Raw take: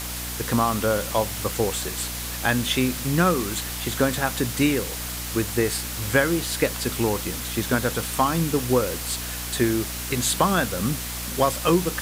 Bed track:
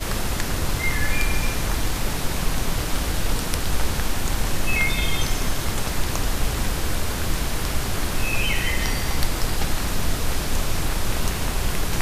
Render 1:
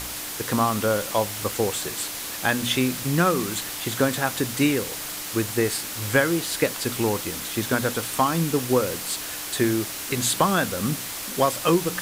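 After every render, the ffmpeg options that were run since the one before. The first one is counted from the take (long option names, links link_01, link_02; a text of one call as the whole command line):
ffmpeg -i in.wav -af "bandreject=frequency=60:width_type=h:width=4,bandreject=frequency=120:width_type=h:width=4,bandreject=frequency=180:width_type=h:width=4,bandreject=frequency=240:width_type=h:width=4" out.wav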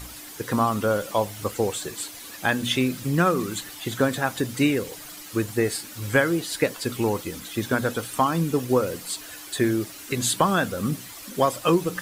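ffmpeg -i in.wav -af "afftdn=noise_reduction=11:noise_floor=-33" out.wav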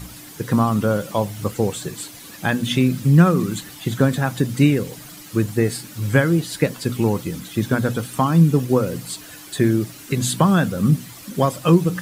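ffmpeg -i in.wav -af "equalizer=frequency=150:width=0.99:gain=13,bandreject=frequency=122.5:width_type=h:width=4,bandreject=frequency=245:width_type=h:width=4" out.wav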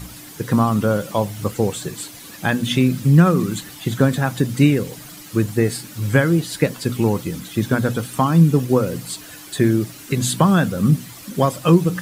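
ffmpeg -i in.wav -af "volume=1dB,alimiter=limit=-3dB:level=0:latency=1" out.wav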